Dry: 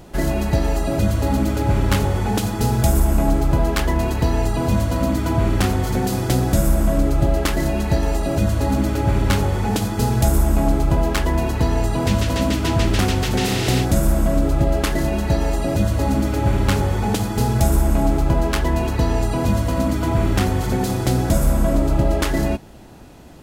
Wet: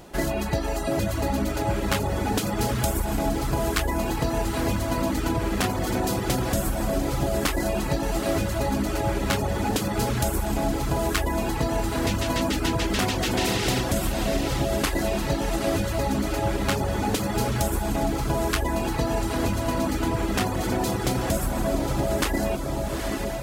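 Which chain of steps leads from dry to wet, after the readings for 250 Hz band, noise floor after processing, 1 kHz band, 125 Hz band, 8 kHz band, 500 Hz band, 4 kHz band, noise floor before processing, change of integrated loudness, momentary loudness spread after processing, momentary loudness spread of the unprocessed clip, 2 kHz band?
-5.5 dB, -28 dBFS, -2.5 dB, -9.0 dB, -1.5 dB, -3.5 dB, -1.5 dB, -25 dBFS, -6.0 dB, 2 LU, 3 LU, -1.5 dB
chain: echo that smears into a reverb 868 ms, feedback 55%, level -5.5 dB; compression 2.5:1, threshold -15 dBFS, peak gain reduction 4.5 dB; bass shelf 240 Hz -8 dB; reverb removal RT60 0.51 s

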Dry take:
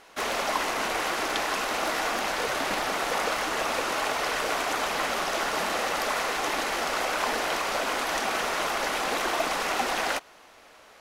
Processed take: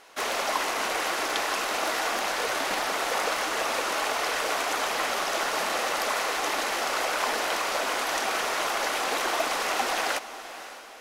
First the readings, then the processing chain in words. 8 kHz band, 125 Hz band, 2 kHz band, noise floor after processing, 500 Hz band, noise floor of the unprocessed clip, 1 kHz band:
+2.0 dB, no reading, +0.5 dB, -41 dBFS, 0.0 dB, -53 dBFS, 0.0 dB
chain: tone controls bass -8 dB, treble +2 dB; echo that smears into a reverb 566 ms, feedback 45%, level -14 dB

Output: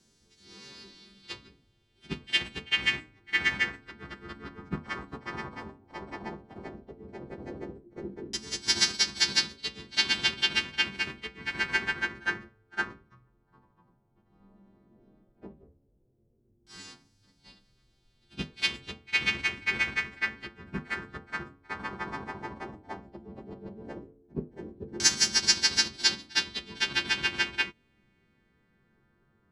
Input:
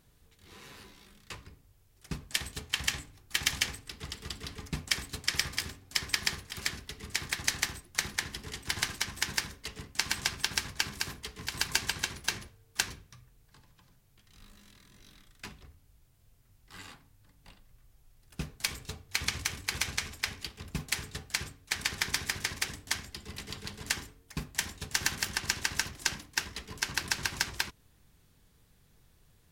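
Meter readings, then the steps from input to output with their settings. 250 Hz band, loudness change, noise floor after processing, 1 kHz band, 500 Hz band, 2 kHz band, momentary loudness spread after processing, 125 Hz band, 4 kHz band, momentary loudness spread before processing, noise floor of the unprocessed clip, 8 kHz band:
+5.0 dB, +5.0 dB, -69 dBFS, +2.5 dB, +6.5 dB, +4.5 dB, 20 LU, -2.0 dB, +4.5 dB, 13 LU, -65 dBFS, -1.0 dB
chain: partials quantised in pitch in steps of 2 st; pre-echo 60 ms -20 dB; in parallel at -4 dB: bit crusher 5-bit; on the sum: LFO low-pass saw down 0.12 Hz 400–6200 Hz; small resonant body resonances 220/340 Hz, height 13 dB, ringing for 30 ms; trim -7 dB

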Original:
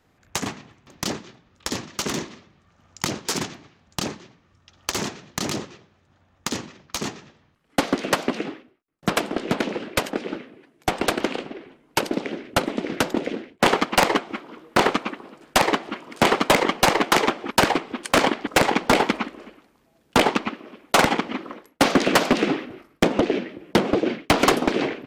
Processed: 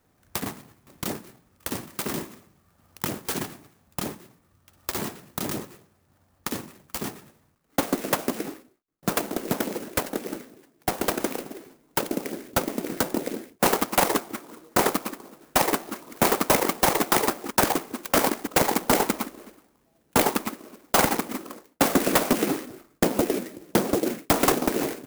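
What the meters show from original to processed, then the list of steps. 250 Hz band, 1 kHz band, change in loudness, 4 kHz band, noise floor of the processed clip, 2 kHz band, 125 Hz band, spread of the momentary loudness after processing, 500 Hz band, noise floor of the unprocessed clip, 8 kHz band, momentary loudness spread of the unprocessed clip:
-3.0 dB, -4.0 dB, -2.5 dB, -6.0 dB, -66 dBFS, -6.0 dB, -3.0 dB, 15 LU, -3.0 dB, -63 dBFS, +1.0 dB, 14 LU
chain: sampling jitter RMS 0.08 ms; trim -3 dB

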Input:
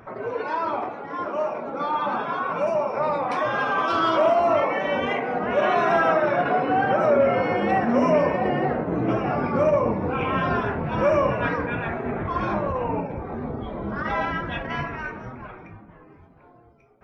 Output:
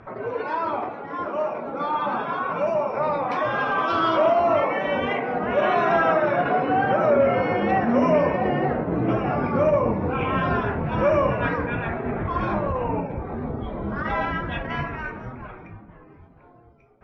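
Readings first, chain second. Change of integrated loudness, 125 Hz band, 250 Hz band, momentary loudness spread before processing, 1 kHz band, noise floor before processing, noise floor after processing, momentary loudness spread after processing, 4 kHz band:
+0.5 dB, +2.0 dB, +1.0 dB, 12 LU, 0.0 dB, -51 dBFS, -49 dBFS, 11 LU, -1.0 dB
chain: low-pass 4.8 kHz 12 dB/octave; bass shelf 100 Hz +5.5 dB

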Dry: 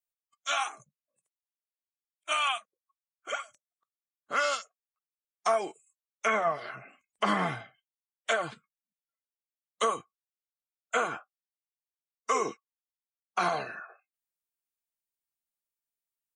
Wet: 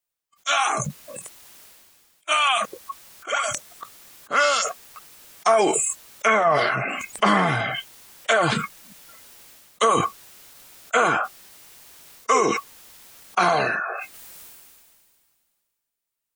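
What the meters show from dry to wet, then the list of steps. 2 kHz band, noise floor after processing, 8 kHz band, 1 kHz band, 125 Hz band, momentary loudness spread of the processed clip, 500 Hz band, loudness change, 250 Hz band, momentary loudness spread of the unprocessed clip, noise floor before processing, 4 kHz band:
+10.5 dB, -82 dBFS, +14.0 dB, +10.0 dB, +13.5 dB, 18 LU, +10.0 dB, +9.0 dB, +11.5 dB, 15 LU, under -85 dBFS, +9.5 dB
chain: decay stretcher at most 27 dB/s; trim +8 dB

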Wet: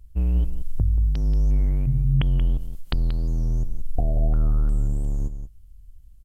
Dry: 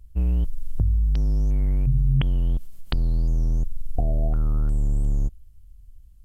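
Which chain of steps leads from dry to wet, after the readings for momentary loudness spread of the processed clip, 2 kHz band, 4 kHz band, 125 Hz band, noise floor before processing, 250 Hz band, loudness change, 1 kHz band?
9 LU, +0.5 dB, no reading, +0.5 dB, -48 dBFS, +0.5 dB, +0.5 dB, 0.0 dB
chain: delay 181 ms -11.5 dB

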